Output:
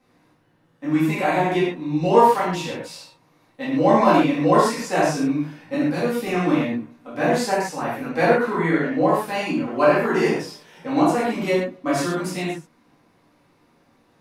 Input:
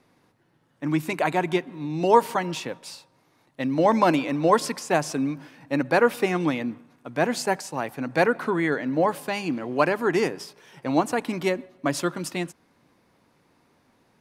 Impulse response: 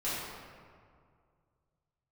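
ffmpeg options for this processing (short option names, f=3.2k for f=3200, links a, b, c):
-filter_complex "[0:a]asettb=1/sr,asplit=3[a][b][c];[a]atrim=end=5.744[d];[b]atrim=start=5.74:end=6.26,asetpts=PTS-STARTPTS,afade=t=in:d=0.004:c=qsin,afade=t=out:st=0.516:d=0.004:c=qsin,acrossover=split=320|3000[e][f][g];[f]acompressor=threshold=-35dB:ratio=3[h];[e][h][g]amix=inputs=3:normalize=0[i];[c]atrim=start=6.256[j];[d][i]acrossfade=d=0.004:c1=hsin:c2=qsin[k];[k][j]acrossfade=d=0.004:c1=qsin:c2=hsin[l];[1:a]atrim=start_sample=2205,afade=t=out:st=0.2:d=0.01,atrim=end_sample=9261[m];[l][m]afir=irnorm=-1:irlink=0,volume=-2dB"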